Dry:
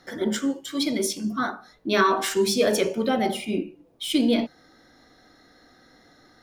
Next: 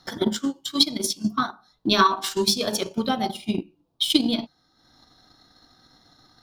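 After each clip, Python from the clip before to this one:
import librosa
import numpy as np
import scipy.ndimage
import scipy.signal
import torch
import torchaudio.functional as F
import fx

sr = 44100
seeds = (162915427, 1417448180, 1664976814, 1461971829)

y = fx.graphic_eq(x, sr, hz=(125, 250, 500, 1000, 2000, 4000, 8000), db=(3, -3, -10, 5, -11, 7, -3))
y = fx.transient(y, sr, attack_db=11, sustain_db=-8)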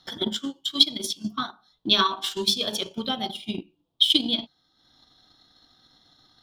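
y = fx.peak_eq(x, sr, hz=3300.0, db=13.0, octaves=0.45)
y = F.gain(torch.from_numpy(y), -6.0).numpy()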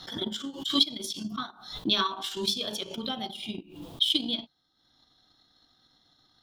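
y = fx.pre_swell(x, sr, db_per_s=90.0)
y = F.gain(torch.from_numpy(y), -6.0).numpy()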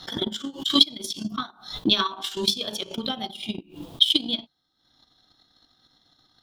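y = fx.transient(x, sr, attack_db=6, sustain_db=-3)
y = F.gain(torch.from_numpy(y), 2.0).numpy()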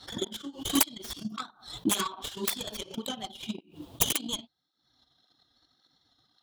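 y = fx.tracing_dist(x, sr, depth_ms=0.49)
y = fx.flanger_cancel(y, sr, hz=1.8, depth_ms=6.7)
y = F.gain(torch.from_numpy(y), -3.5).numpy()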